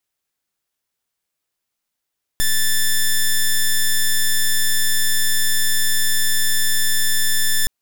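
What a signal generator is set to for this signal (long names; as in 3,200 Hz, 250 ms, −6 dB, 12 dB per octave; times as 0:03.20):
pulse wave 1,760 Hz, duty 7% −15.5 dBFS 5.27 s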